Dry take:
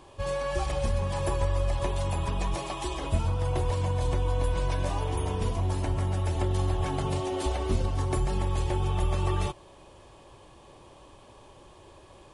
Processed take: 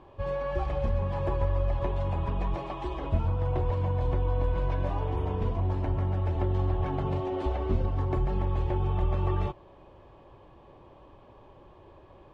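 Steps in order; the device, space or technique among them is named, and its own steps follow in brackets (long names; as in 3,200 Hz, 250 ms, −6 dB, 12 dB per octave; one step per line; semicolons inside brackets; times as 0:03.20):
phone in a pocket (low-pass filter 3,300 Hz 12 dB per octave; high-shelf EQ 2,300 Hz −11 dB)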